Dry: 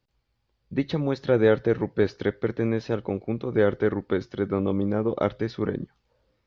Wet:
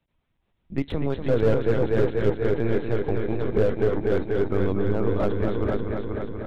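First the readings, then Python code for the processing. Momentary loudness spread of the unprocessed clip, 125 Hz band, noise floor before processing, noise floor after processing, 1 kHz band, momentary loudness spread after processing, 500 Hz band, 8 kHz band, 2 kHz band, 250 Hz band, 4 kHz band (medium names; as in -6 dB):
9 LU, +3.5 dB, -75 dBFS, -73 dBFS, +0.5 dB, 7 LU, +1.5 dB, no reading, -1.5 dB, -0.5 dB, -2.0 dB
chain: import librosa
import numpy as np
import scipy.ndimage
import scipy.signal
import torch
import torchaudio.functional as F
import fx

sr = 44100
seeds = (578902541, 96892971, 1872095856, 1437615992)

y = fx.lpc_vocoder(x, sr, seeds[0], excitation='pitch_kept', order=10)
y = fx.echo_heads(y, sr, ms=242, heads='first and second', feedback_pct=62, wet_db=-7.5)
y = fx.slew_limit(y, sr, full_power_hz=67.0)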